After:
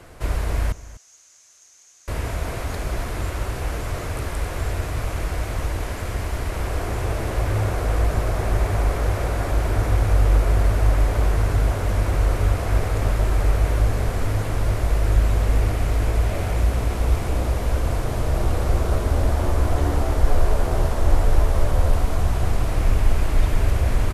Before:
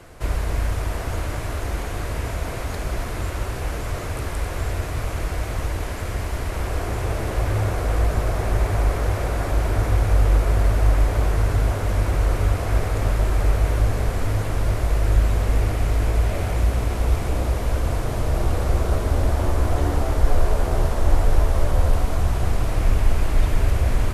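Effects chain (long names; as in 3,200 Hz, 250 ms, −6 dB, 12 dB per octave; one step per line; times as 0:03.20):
0:00.72–0:02.08: resonant band-pass 6,400 Hz, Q 7.6
single-tap delay 248 ms −17.5 dB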